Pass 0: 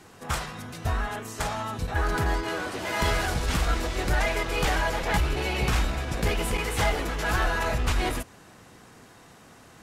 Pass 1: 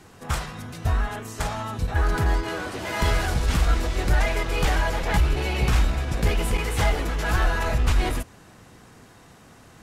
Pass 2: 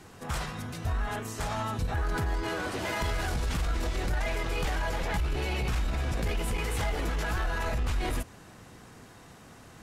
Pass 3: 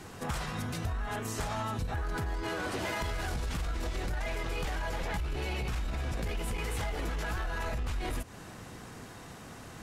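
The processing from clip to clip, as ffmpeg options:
ffmpeg -i in.wav -af "lowshelf=frequency=150:gain=6.5" out.wav
ffmpeg -i in.wav -af "alimiter=limit=-21.5dB:level=0:latency=1:release=39,aeval=exprs='0.0841*(cos(1*acos(clip(val(0)/0.0841,-1,1)))-cos(1*PI/2))+0.00335*(cos(2*acos(clip(val(0)/0.0841,-1,1)))-cos(2*PI/2))':channel_layout=same,volume=-1dB" out.wav
ffmpeg -i in.wav -af "acompressor=threshold=-35dB:ratio=6,volume=4dB" out.wav

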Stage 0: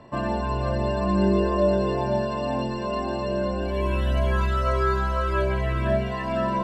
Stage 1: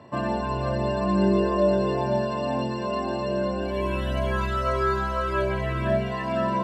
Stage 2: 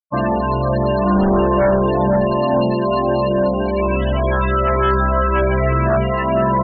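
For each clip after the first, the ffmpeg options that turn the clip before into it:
ffmpeg -i in.wav -af "highpass=frequency=75:width=0.5412,highpass=frequency=75:width=1.3066" out.wav
ffmpeg -i in.wav -filter_complex "[0:a]aeval=exprs='0.335*(cos(1*acos(clip(val(0)/0.335,-1,1)))-cos(1*PI/2))+0.15*(cos(5*acos(clip(val(0)/0.335,-1,1)))-cos(5*PI/2))':channel_layout=same,asplit=2[link_01][link_02];[link_02]adelay=932.9,volume=-8dB,highshelf=frequency=4000:gain=-21[link_03];[link_01][link_03]amix=inputs=2:normalize=0,afftfilt=real='re*gte(hypot(re,im),0.112)':imag='im*gte(hypot(re,im),0.112)':win_size=1024:overlap=0.75" out.wav

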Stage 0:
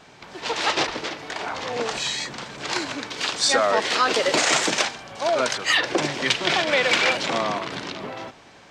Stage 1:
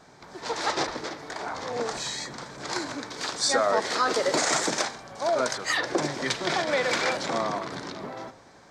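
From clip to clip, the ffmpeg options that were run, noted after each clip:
ffmpeg -i in.wav -af "equalizer=frequency=2800:width=2.3:gain=-12.5,bandreject=frequency=105.4:width_type=h:width=4,bandreject=frequency=210.8:width_type=h:width=4,bandreject=frequency=316.2:width_type=h:width=4,bandreject=frequency=421.6:width_type=h:width=4,bandreject=frequency=527:width_type=h:width=4,bandreject=frequency=632.4:width_type=h:width=4,bandreject=frequency=737.8:width_type=h:width=4,bandreject=frequency=843.2:width_type=h:width=4,bandreject=frequency=948.6:width_type=h:width=4,bandreject=frequency=1054:width_type=h:width=4,bandreject=frequency=1159.4:width_type=h:width=4,bandreject=frequency=1264.8:width_type=h:width=4,bandreject=frequency=1370.2:width_type=h:width=4,bandreject=frequency=1475.6:width_type=h:width=4,bandreject=frequency=1581:width_type=h:width=4,bandreject=frequency=1686.4:width_type=h:width=4,bandreject=frequency=1791.8:width_type=h:width=4,bandreject=frequency=1897.2:width_type=h:width=4,bandreject=frequency=2002.6:width_type=h:width=4,bandreject=frequency=2108:width_type=h:width=4,bandreject=frequency=2213.4:width_type=h:width=4,bandreject=frequency=2318.8:width_type=h:width=4,bandreject=frequency=2424.2:width_type=h:width=4,bandreject=frequency=2529.6:width_type=h:width=4,bandreject=frequency=2635:width_type=h:width=4,bandreject=frequency=2740.4:width_type=h:width=4,bandreject=frequency=2845.8:width_type=h:width=4,bandreject=frequency=2951.2:width_type=h:width=4,bandreject=frequency=3056.6:width_type=h:width=4,bandreject=frequency=3162:width_type=h:width=4,bandreject=frequency=3267.4:width_type=h:width=4,bandreject=frequency=3372.8:width_type=h:width=4,bandreject=frequency=3478.2:width_type=h:width=4,bandreject=frequency=3583.6:width_type=h:width=4,bandreject=frequency=3689:width_type=h:width=4,bandreject=frequency=3794.4:width_type=h:width=4,bandreject=frequency=3899.8:width_type=h:width=4,bandreject=frequency=4005.2:width_type=h:width=4,bandreject=frequency=4110.6:width_type=h:width=4,volume=-2.5dB" out.wav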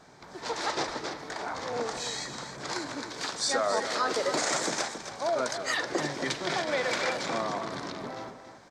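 ffmpeg -i in.wav -filter_complex "[0:a]asplit=2[link_01][link_02];[link_02]alimiter=limit=-21.5dB:level=0:latency=1:release=424,volume=-1dB[link_03];[link_01][link_03]amix=inputs=2:normalize=0,aecho=1:1:274:0.316,volume=-7dB" out.wav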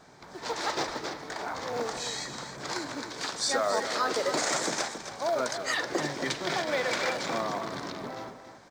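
ffmpeg -i in.wav -af "acrusher=bits=8:mode=log:mix=0:aa=0.000001" out.wav

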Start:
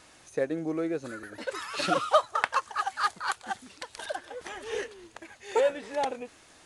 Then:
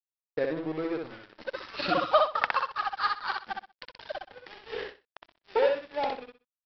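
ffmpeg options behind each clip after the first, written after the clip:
ffmpeg -i in.wav -af "aresample=11025,aeval=exprs='sgn(val(0))*max(abs(val(0))-0.0112,0)':channel_layout=same,aresample=44100,aecho=1:1:63|126|189:0.668|0.147|0.0323" out.wav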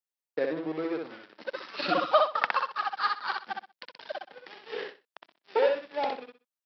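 ffmpeg -i in.wav -af "highpass=frequency=170:width=0.5412,highpass=frequency=170:width=1.3066" out.wav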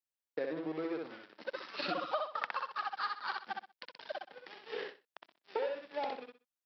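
ffmpeg -i in.wav -af "acompressor=threshold=-29dB:ratio=4,volume=-4dB" out.wav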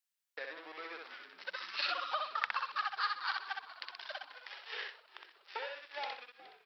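ffmpeg -i in.wav -filter_complex "[0:a]highpass=1300,asplit=6[link_01][link_02][link_03][link_04][link_05][link_06];[link_02]adelay=419,afreqshift=-66,volume=-17.5dB[link_07];[link_03]adelay=838,afreqshift=-132,volume=-22.1dB[link_08];[link_04]adelay=1257,afreqshift=-198,volume=-26.7dB[link_09];[link_05]adelay=1676,afreqshift=-264,volume=-31.2dB[link_10];[link_06]adelay=2095,afreqshift=-330,volume=-35.8dB[link_11];[link_01][link_07][link_08][link_09][link_10][link_11]amix=inputs=6:normalize=0,volume=5dB" out.wav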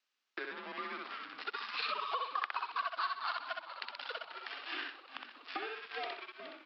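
ffmpeg -i in.wav -af "acompressor=threshold=-53dB:ratio=2,afreqshift=-120,highpass=frequency=220:width=0.5412,highpass=frequency=220:width=1.3066,equalizer=frequency=260:width_type=q:width=4:gain=5,equalizer=frequency=1200:width_type=q:width=4:gain=5,equalizer=frequency=2700:width_type=q:width=4:gain=3,lowpass=frequency=5400:width=0.5412,lowpass=frequency=5400:width=1.3066,volume=8dB" out.wav

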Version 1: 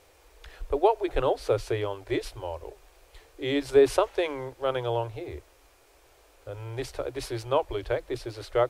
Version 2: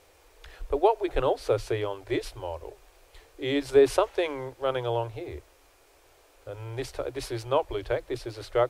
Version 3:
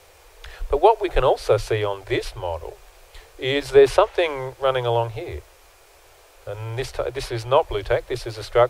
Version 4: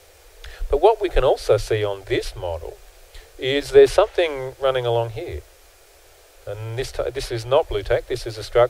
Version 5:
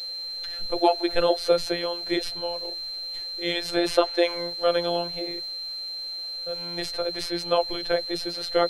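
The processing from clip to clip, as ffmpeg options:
ffmpeg -i in.wav -af "bandreject=frequency=50:width_type=h:width=6,bandreject=frequency=100:width_type=h:width=6" out.wav
ffmpeg -i in.wav -filter_complex "[0:a]equalizer=frequency=260:width_type=o:width=0.69:gain=-11.5,acrossover=split=340|1100|4400[link_01][link_02][link_03][link_04];[link_04]alimiter=level_in=14dB:limit=-24dB:level=0:latency=1:release=420,volume=-14dB[link_05];[link_01][link_02][link_03][link_05]amix=inputs=4:normalize=0,volume=8.5dB" out.wav
ffmpeg -i in.wav -af "equalizer=frequency=160:width_type=o:width=0.67:gain=-7,equalizer=frequency=1000:width_type=o:width=0.67:gain=-8,equalizer=frequency=2500:width_type=o:width=0.67:gain=-3,volume=2.5dB" out.wav
ffmpeg -i in.wav -af "aeval=exprs='val(0)+0.0398*sin(2*PI*4100*n/s)':channel_layout=same,afftfilt=real='hypot(re,im)*cos(PI*b)':imag='0':win_size=1024:overlap=0.75,lowshelf=frequency=200:gain=-4" out.wav

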